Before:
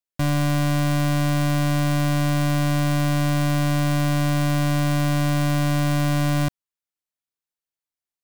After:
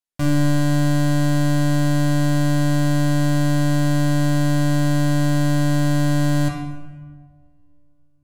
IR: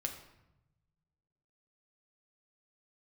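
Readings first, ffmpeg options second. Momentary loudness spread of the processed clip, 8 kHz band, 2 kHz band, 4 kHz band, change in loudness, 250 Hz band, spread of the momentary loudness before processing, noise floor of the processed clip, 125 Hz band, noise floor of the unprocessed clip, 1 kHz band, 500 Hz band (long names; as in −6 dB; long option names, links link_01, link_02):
1 LU, +1.0 dB, +0.5 dB, −0.5 dB, +2.5 dB, +4.0 dB, 0 LU, −53 dBFS, +2.0 dB, below −85 dBFS, −1.5 dB, +2.0 dB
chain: -filter_complex "[1:a]atrim=start_sample=2205,asetrate=24255,aresample=44100[link_01];[0:a][link_01]afir=irnorm=-1:irlink=0,volume=-3dB"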